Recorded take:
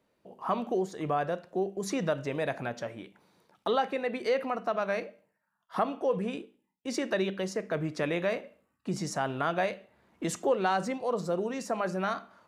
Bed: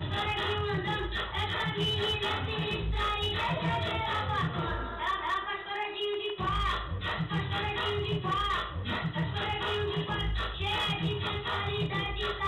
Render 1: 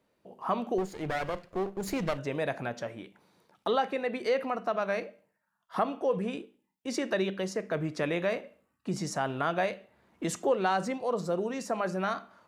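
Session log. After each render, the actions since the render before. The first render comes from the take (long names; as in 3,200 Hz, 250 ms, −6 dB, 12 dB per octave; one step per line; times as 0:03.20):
0:00.78–0:02.18: lower of the sound and its delayed copy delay 0.44 ms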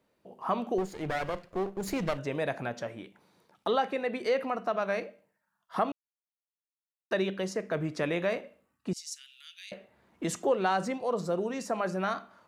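0:05.92–0:07.11: silence
0:08.93–0:09.72: inverse Chebyshev high-pass filter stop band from 910 Hz, stop band 60 dB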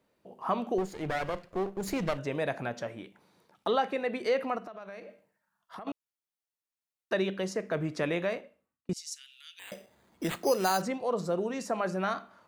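0:04.58–0:05.87: downward compressor, threshold −41 dBFS
0:08.14–0:08.89: fade out
0:09.59–0:10.82: bad sample-rate conversion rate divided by 8×, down none, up hold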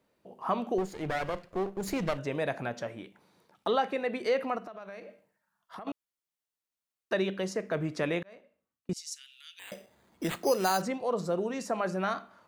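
0:08.23–0:08.96: fade in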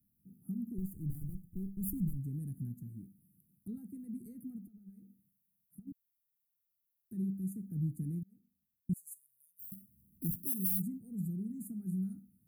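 inverse Chebyshev band-stop filter 530–5,800 Hz, stop band 50 dB
bass and treble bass +3 dB, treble +11 dB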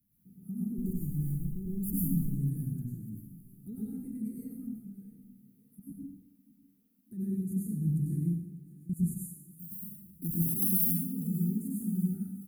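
repeating echo 598 ms, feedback 59%, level −21 dB
dense smooth reverb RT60 0.79 s, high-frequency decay 0.95×, pre-delay 85 ms, DRR −6.5 dB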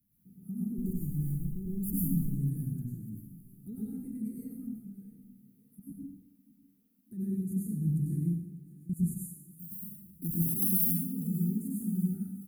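no processing that can be heard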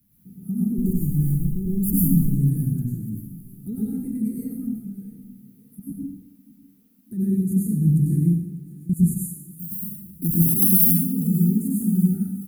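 level +11.5 dB
brickwall limiter −3 dBFS, peak gain reduction 1.5 dB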